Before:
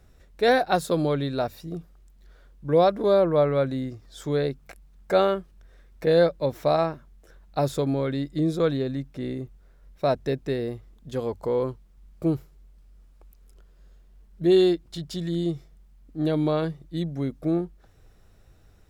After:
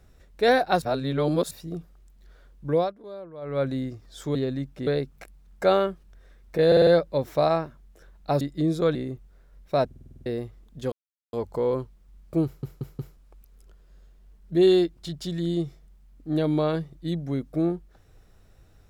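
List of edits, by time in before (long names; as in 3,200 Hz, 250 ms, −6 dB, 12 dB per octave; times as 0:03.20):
0:00.82–0:01.51: reverse
0:02.68–0:03.67: duck −20 dB, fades 0.26 s
0:06.15: stutter 0.05 s, 5 plays
0:07.69–0:08.19: remove
0:08.73–0:09.25: move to 0:04.35
0:10.16: stutter in place 0.05 s, 8 plays
0:11.22: splice in silence 0.41 s
0:12.34: stutter in place 0.18 s, 4 plays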